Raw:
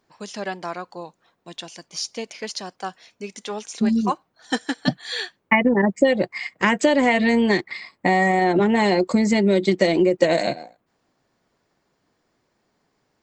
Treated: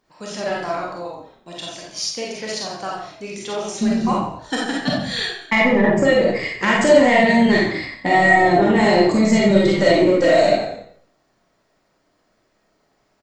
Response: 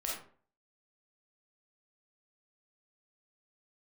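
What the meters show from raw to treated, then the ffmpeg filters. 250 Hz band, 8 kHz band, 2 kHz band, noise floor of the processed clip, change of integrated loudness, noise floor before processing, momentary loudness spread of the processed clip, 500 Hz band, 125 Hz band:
+2.5 dB, +4.5 dB, +4.5 dB, -65 dBFS, +3.5 dB, -71 dBFS, 17 LU, +4.5 dB, +3.5 dB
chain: -filter_complex "[0:a]acontrast=89,asplit=5[s0][s1][s2][s3][s4];[s1]adelay=89,afreqshift=-37,volume=0.316[s5];[s2]adelay=178,afreqshift=-74,volume=0.133[s6];[s3]adelay=267,afreqshift=-111,volume=0.0556[s7];[s4]adelay=356,afreqshift=-148,volume=0.0234[s8];[s0][s5][s6][s7][s8]amix=inputs=5:normalize=0[s9];[1:a]atrim=start_sample=2205[s10];[s9][s10]afir=irnorm=-1:irlink=0,volume=0.562"

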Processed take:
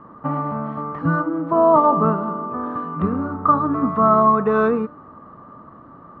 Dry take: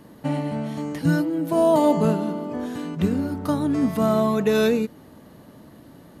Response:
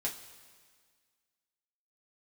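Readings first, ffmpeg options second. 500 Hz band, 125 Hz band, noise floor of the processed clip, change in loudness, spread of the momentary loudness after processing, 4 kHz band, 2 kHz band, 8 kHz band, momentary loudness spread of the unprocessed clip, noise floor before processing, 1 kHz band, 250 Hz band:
+2.0 dB, 0.0 dB, -44 dBFS, +3.5 dB, 12 LU, under -15 dB, +3.0 dB, under -30 dB, 11 LU, -48 dBFS, +11.0 dB, -0.5 dB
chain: -af "lowpass=f=1200:t=q:w=14,bandreject=f=295.4:t=h:w=4,bandreject=f=590.8:t=h:w=4,bandreject=f=886.2:t=h:w=4,bandreject=f=1181.6:t=h:w=4,bandreject=f=1477:t=h:w=4,bandreject=f=1772.4:t=h:w=4,bandreject=f=2067.8:t=h:w=4,bandreject=f=2363.2:t=h:w=4,bandreject=f=2658.6:t=h:w=4,bandreject=f=2954:t=h:w=4,bandreject=f=3249.4:t=h:w=4,bandreject=f=3544.8:t=h:w=4,bandreject=f=3840.2:t=h:w=4,bandreject=f=4135.6:t=h:w=4,bandreject=f=4431:t=h:w=4,bandreject=f=4726.4:t=h:w=4,bandreject=f=5021.8:t=h:w=4,bandreject=f=5317.2:t=h:w=4,bandreject=f=5612.6:t=h:w=4,bandreject=f=5908:t=h:w=4,bandreject=f=6203.4:t=h:w=4,bandreject=f=6498.8:t=h:w=4,bandreject=f=6794.2:t=h:w=4,bandreject=f=7089.6:t=h:w=4,bandreject=f=7385:t=h:w=4,bandreject=f=7680.4:t=h:w=4,bandreject=f=7975.8:t=h:w=4,bandreject=f=8271.2:t=h:w=4,bandreject=f=8566.6:t=h:w=4,bandreject=f=8862:t=h:w=4,bandreject=f=9157.4:t=h:w=4,bandreject=f=9452.8:t=h:w=4,bandreject=f=9748.2:t=h:w=4,bandreject=f=10043.6:t=h:w=4,bandreject=f=10339:t=h:w=4"

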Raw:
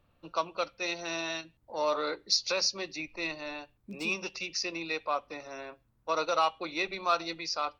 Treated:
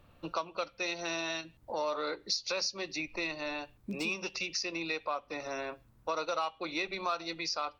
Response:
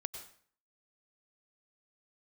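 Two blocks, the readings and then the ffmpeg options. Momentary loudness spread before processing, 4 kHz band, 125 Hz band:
13 LU, -3.5 dB, +1.0 dB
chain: -af "acompressor=threshold=0.00708:ratio=3,volume=2.51"

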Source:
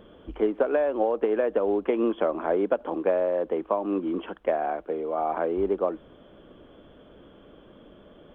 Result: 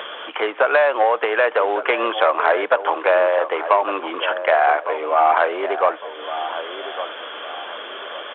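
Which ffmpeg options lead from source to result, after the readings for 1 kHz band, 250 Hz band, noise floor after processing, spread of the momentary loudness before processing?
+14.0 dB, -5.0 dB, -34 dBFS, 6 LU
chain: -filter_complex "[0:a]aderivative,acompressor=mode=upward:threshold=0.002:ratio=2.5,apsyclip=35.5,aresample=8000,asoftclip=type=tanh:threshold=0.398,aresample=44100,highpass=690,lowpass=2200,asplit=2[s0][s1];[s1]adelay=1157,lowpass=f=1400:p=1,volume=0.316,asplit=2[s2][s3];[s3]adelay=1157,lowpass=f=1400:p=1,volume=0.4,asplit=2[s4][s5];[s5]adelay=1157,lowpass=f=1400:p=1,volume=0.4,asplit=2[s6][s7];[s7]adelay=1157,lowpass=f=1400:p=1,volume=0.4[s8];[s2][s4][s6][s8]amix=inputs=4:normalize=0[s9];[s0][s9]amix=inputs=2:normalize=0,volume=1.68"

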